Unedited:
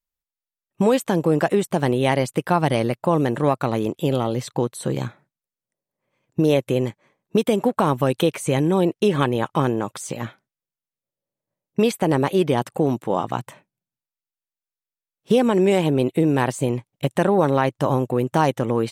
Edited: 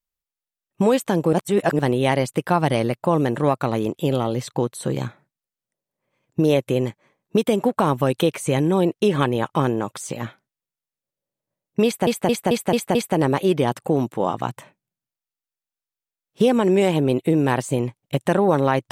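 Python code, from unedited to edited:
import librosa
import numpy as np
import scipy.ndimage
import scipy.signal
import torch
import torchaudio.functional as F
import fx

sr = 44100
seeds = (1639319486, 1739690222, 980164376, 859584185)

y = fx.edit(x, sr, fx.reverse_span(start_s=1.33, length_s=0.46),
    fx.stutter(start_s=11.85, slice_s=0.22, count=6), tone=tone)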